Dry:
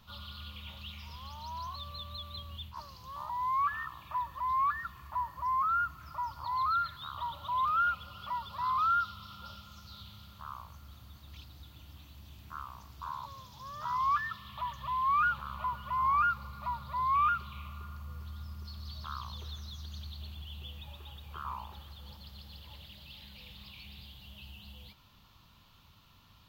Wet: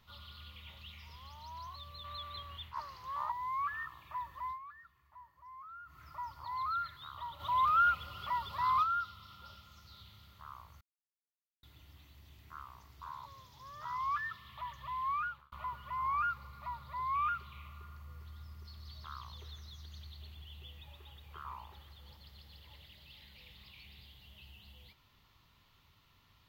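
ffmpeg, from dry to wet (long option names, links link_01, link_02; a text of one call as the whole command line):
ffmpeg -i in.wav -filter_complex "[0:a]asettb=1/sr,asplit=3[link_01][link_02][link_03];[link_01]atrim=end=2.044[link_04];[link_02]atrim=start=2.04:end=3.32,asetpts=PTS-STARTPTS,afade=type=in:duration=0.004:curve=qsin,afade=type=out:start_time=1.276:duration=0.004:curve=qsin,equalizer=frequency=1300:width_type=o:width=2.2:gain=11[link_05];[link_03]atrim=start=3.316[link_06];[link_04][link_05]acrossfade=duration=0.004:curve1=hsin:curve2=qsin[link_07];[link_07][link_06]acrossfade=duration=0.004:curve1=qsin:curve2=hsin,asplit=3[link_08][link_09][link_10];[link_08]afade=type=out:start_time=7.39:duration=0.02[link_11];[link_09]acontrast=85,afade=type=in:start_time=7.39:duration=0.02,afade=type=out:start_time=8.82:duration=0.02[link_12];[link_10]afade=type=in:start_time=8.82:duration=0.02[link_13];[link_11][link_12][link_13]amix=inputs=3:normalize=0,asplit=6[link_14][link_15][link_16][link_17][link_18][link_19];[link_14]atrim=end=4.59,asetpts=PTS-STARTPTS,afade=type=out:start_time=4.46:duration=0.13:silence=0.177828[link_20];[link_15]atrim=start=4.59:end=5.85,asetpts=PTS-STARTPTS,volume=-15dB[link_21];[link_16]atrim=start=5.85:end=10.81,asetpts=PTS-STARTPTS,afade=type=in:duration=0.13:silence=0.177828,afade=type=out:start_time=4.956:duration=0.004:curve=hsin[link_22];[link_17]atrim=start=10.81:end=11.63,asetpts=PTS-STARTPTS,volume=0[link_23];[link_18]atrim=start=11.63:end=15.52,asetpts=PTS-STARTPTS,afade=type=in:duration=0.004:curve=hsin,afade=type=out:start_time=3.45:duration=0.44[link_24];[link_19]atrim=start=15.52,asetpts=PTS-STARTPTS,afade=type=in:duration=0.004:curve=hsin[link_25];[link_20][link_21][link_22][link_23][link_24][link_25]concat=n=6:v=0:a=1,equalizer=frequency=200:width_type=o:width=0.33:gain=-5,equalizer=frequency=400:width_type=o:width=0.33:gain=5,equalizer=frequency=2000:width_type=o:width=0.33:gain=9,volume=-6.5dB" out.wav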